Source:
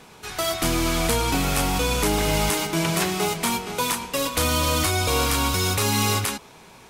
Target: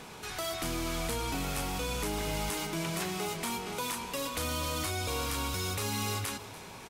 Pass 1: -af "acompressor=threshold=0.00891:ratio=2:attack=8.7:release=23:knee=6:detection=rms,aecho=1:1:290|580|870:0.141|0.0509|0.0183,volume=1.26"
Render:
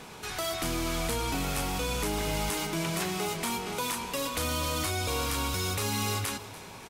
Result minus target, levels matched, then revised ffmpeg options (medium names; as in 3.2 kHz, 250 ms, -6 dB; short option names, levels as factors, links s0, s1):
compression: peak gain reduction -3 dB
-af "acompressor=threshold=0.00447:ratio=2:attack=8.7:release=23:knee=6:detection=rms,aecho=1:1:290|580|870:0.141|0.0509|0.0183,volume=1.26"